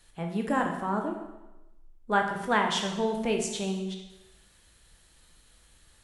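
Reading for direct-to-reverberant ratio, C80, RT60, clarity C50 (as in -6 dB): 2.0 dB, 8.0 dB, 1.0 s, 5.0 dB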